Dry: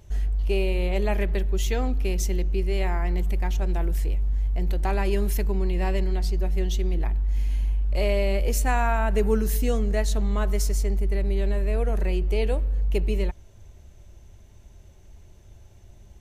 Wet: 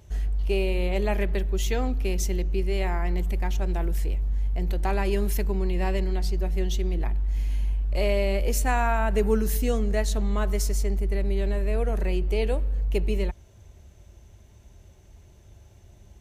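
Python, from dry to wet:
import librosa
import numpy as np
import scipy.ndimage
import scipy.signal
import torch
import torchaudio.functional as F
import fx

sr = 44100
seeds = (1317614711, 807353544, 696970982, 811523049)

y = scipy.signal.sosfilt(scipy.signal.butter(2, 40.0, 'highpass', fs=sr, output='sos'), x)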